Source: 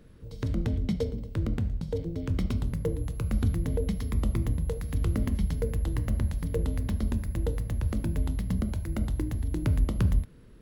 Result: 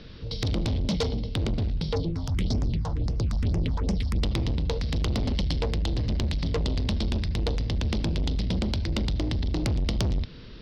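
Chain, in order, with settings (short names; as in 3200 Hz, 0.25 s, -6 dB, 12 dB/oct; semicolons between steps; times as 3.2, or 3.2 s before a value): steep low-pass 5400 Hz 72 dB/oct; soft clip -31.5 dBFS, distortion -7 dB; dynamic EQ 1400 Hz, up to -4 dB, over -59 dBFS, Q 1.4; 1.94–4.22 phaser stages 4, 1.2 Hz -> 3.5 Hz, lowest notch 370–3900 Hz; EQ curve 390 Hz 0 dB, 1800 Hz +4 dB, 3600 Hz +14 dB; gain +8.5 dB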